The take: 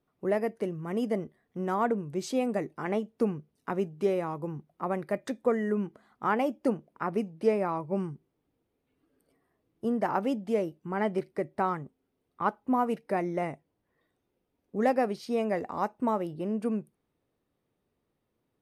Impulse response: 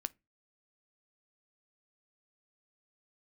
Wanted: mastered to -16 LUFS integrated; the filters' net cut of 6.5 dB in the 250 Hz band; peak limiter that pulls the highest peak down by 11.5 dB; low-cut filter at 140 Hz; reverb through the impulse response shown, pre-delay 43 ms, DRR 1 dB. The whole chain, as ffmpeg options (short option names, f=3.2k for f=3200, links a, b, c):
-filter_complex "[0:a]highpass=140,equalizer=f=250:t=o:g=-7.5,alimiter=level_in=1.5dB:limit=-24dB:level=0:latency=1,volume=-1.5dB,asplit=2[a][b];[1:a]atrim=start_sample=2205,adelay=43[c];[b][c]afir=irnorm=-1:irlink=0,volume=0.5dB[d];[a][d]amix=inputs=2:normalize=0,volume=18.5dB"